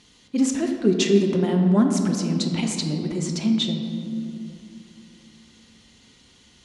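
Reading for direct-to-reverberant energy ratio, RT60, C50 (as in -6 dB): 2.5 dB, 2.6 s, 4.5 dB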